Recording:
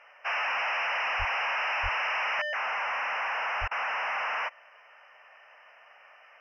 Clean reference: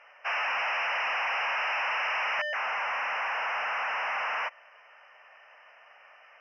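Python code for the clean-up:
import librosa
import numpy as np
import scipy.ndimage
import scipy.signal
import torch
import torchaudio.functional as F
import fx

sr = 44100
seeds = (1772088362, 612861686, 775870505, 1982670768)

y = fx.highpass(x, sr, hz=140.0, slope=24, at=(1.18, 1.3), fade=0.02)
y = fx.highpass(y, sr, hz=140.0, slope=24, at=(1.82, 1.94), fade=0.02)
y = fx.highpass(y, sr, hz=140.0, slope=24, at=(3.6, 3.72), fade=0.02)
y = fx.fix_interpolate(y, sr, at_s=(3.68,), length_ms=31.0)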